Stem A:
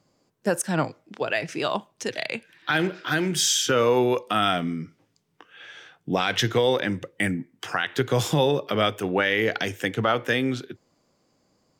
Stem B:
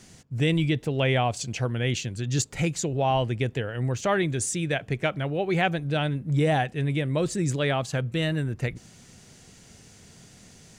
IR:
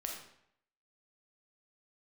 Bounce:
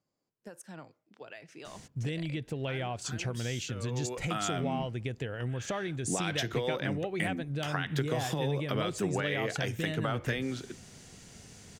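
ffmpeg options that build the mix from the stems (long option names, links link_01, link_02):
-filter_complex "[0:a]acompressor=threshold=-24dB:ratio=10,volume=-5dB,afade=type=in:start_time=3.77:duration=0.76:silence=0.223872[link_01];[1:a]acompressor=threshold=-31dB:ratio=10,adelay=1650,volume=-0.5dB[link_02];[link_01][link_02]amix=inputs=2:normalize=0"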